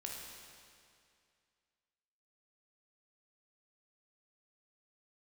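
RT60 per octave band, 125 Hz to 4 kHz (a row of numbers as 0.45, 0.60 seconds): 2.3, 2.3, 2.3, 2.3, 2.3, 2.1 seconds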